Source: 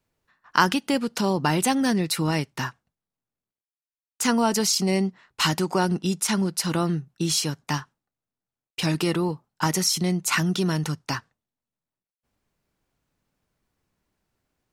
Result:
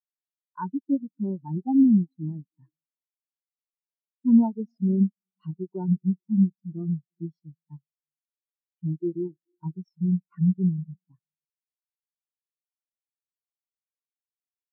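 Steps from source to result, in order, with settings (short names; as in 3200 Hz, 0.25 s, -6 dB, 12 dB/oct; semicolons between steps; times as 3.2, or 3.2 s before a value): high shelf 2700 Hz -8 dB; hard clip -11.5 dBFS, distortion -25 dB; on a send at -14 dB: reverb RT60 1.4 s, pre-delay 0.224 s; on the sum: spectral expander 4:1; gain +1.5 dB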